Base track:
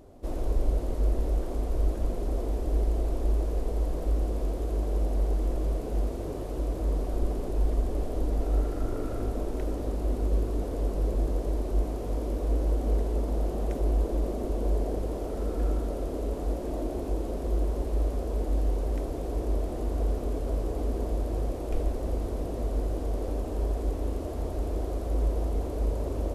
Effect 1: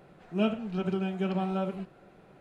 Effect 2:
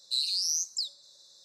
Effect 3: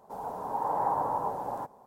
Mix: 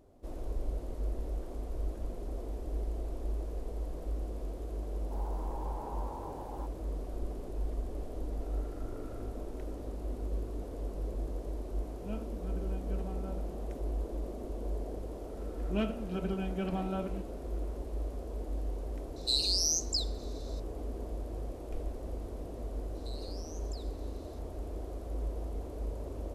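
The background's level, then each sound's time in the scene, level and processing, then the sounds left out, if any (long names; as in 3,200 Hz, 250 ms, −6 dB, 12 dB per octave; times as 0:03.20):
base track −9.5 dB
0:05.01: mix in 3 −7 dB + downward compressor 3 to 1, threshold −36 dBFS
0:11.69: mix in 1 −14 dB + high-frequency loss of the air 420 metres
0:15.37: mix in 1 −5 dB + hard clipping −18.5 dBFS
0:19.16: mix in 2 −0.5 dB
0:22.95: mix in 2 −10.5 dB + downward compressor, threshold −39 dBFS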